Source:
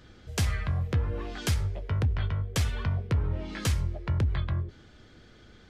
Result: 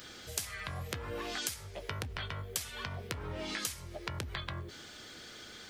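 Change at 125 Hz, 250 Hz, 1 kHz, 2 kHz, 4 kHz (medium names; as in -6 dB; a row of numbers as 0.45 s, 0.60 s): -15.5 dB, -9.5 dB, -2.5 dB, -1.5 dB, -0.5 dB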